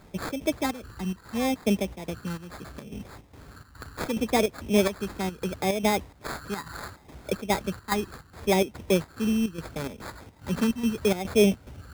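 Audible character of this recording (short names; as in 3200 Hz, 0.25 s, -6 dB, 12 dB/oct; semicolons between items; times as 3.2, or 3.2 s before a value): phasing stages 8, 0.72 Hz, lowest notch 570–1800 Hz; chopped level 2.4 Hz, depth 65%, duty 70%; aliases and images of a low sample rate 2900 Hz, jitter 0%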